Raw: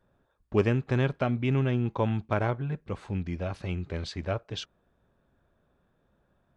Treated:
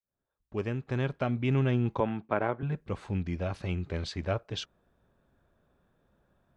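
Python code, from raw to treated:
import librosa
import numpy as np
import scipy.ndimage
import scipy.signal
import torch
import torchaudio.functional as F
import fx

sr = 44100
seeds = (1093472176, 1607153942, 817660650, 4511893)

y = fx.fade_in_head(x, sr, length_s=1.69)
y = fx.bandpass_edges(y, sr, low_hz=210.0, high_hz=2400.0, at=(2.0, 2.63))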